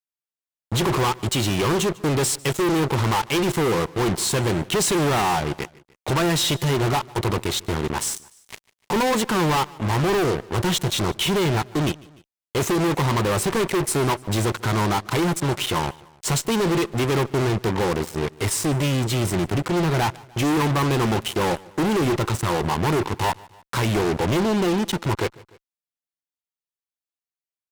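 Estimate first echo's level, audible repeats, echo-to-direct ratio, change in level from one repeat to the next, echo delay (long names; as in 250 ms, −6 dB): −23.0 dB, 2, −21.5 dB, −4.5 dB, 149 ms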